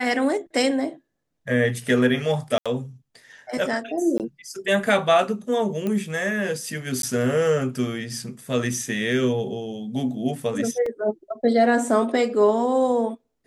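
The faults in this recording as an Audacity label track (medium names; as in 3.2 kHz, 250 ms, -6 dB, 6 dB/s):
2.580000	2.660000	dropout 76 ms
4.180000	4.200000	dropout 18 ms
5.870000	5.870000	pop -15 dBFS
7.020000	7.030000	dropout 12 ms
10.860000	10.860000	dropout 3.4 ms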